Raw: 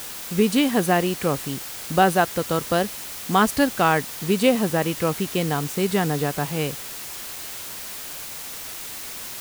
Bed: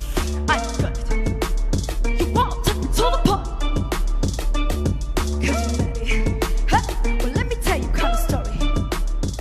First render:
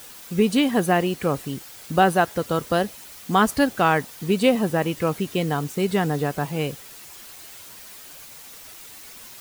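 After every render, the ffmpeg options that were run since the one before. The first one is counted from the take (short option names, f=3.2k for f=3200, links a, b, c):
-af "afftdn=nr=9:nf=-35"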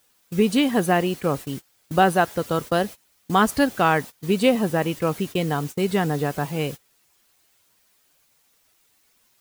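-af "agate=range=-21dB:threshold=-31dB:ratio=16:detection=peak"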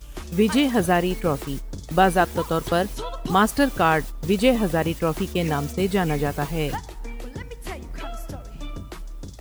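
-filter_complex "[1:a]volume=-13.5dB[a];[0:a][a]amix=inputs=2:normalize=0"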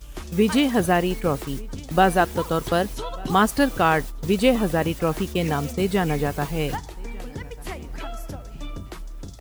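-af "aecho=1:1:1195:0.0631"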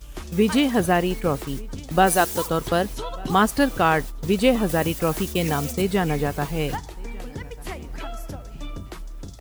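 -filter_complex "[0:a]asplit=3[a][b][c];[a]afade=t=out:st=2.06:d=0.02[d];[b]bass=f=250:g=-5,treble=f=4k:g=12,afade=t=in:st=2.06:d=0.02,afade=t=out:st=2.46:d=0.02[e];[c]afade=t=in:st=2.46:d=0.02[f];[d][e][f]amix=inputs=3:normalize=0,asettb=1/sr,asplit=3[g][h][i];[g]atrim=end=4.694[j];[h]atrim=start=4.69:end=5.82,asetpts=PTS-STARTPTS,afade=t=in:d=0.004:c=qsin,afade=t=out:st=1.126:d=0.004:c=qsin,highshelf=f=5.3k:g=8.5[k];[i]atrim=start=5.816[l];[j][k]acrossfade=d=0.004:c1=hsin:c2=qsin[m];[m][l]acrossfade=d=0.004:c1=qsin:c2=hsin"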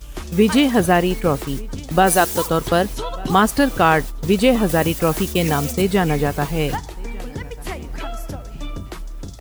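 -af "volume=4.5dB,alimiter=limit=-3dB:level=0:latency=1"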